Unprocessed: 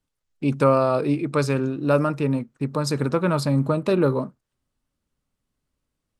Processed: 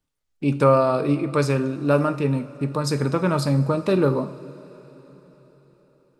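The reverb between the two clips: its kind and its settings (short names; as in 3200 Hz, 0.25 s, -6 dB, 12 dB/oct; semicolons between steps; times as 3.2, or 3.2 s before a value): two-slope reverb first 0.46 s, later 4.7 s, from -18 dB, DRR 8 dB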